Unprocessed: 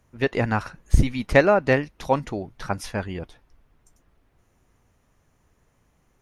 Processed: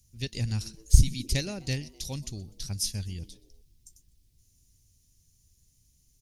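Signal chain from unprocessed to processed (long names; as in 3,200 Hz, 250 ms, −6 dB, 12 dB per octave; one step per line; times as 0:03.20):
drawn EQ curve 100 Hz 0 dB, 640 Hz −25 dB, 1,300 Hz −29 dB, 4,900 Hz +9 dB
on a send: echo with shifted repeats 125 ms, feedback 46%, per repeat +110 Hz, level −23 dB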